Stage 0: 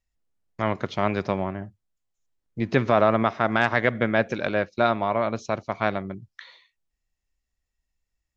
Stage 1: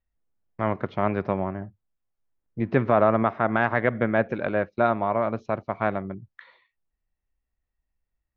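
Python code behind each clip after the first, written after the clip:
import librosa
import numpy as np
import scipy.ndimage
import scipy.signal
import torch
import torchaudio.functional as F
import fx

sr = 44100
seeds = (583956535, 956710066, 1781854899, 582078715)

y = scipy.signal.sosfilt(scipy.signal.butter(2, 1800.0, 'lowpass', fs=sr, output='sos'), x)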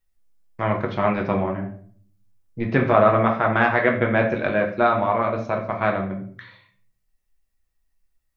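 y = fx.high_shelf(x, sr, hz=2500.0, db=10.0)
y = fx.room_shoebox(y, sr, seeds[0], volume_m3=58.0, walls='mixed', distance_m=0.61)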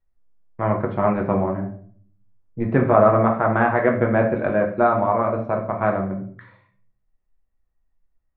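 y = scipy.signal.sosfilt(scipy.signal.butter(2, 1300.0, 'lowpass', fs=sr, output='sos'), x)
y = y * 10.0 ** (2.0 / 20.0)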